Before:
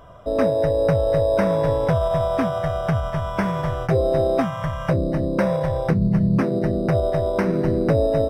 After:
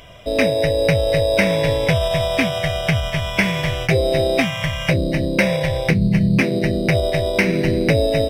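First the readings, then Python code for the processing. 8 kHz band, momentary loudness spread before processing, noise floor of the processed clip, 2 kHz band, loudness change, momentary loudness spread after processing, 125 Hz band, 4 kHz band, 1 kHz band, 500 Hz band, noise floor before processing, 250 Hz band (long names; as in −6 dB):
can't be measured, 5 LU, −26 dBFS, +12.0 dB, +3.0 dB, 4 LU, +2.5 dB, +16.0 dB, −1.0 dB, +1.0 dB, −29 dBFS, +2.5 dB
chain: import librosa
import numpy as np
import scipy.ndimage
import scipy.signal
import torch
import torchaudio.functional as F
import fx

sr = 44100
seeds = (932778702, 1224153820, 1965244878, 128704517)

y = fx.high_shelf_res(x, sr, hz=1700.0, db=10.5, q=3.0)
y = y * 10.0 ** (2.5 / 20.0)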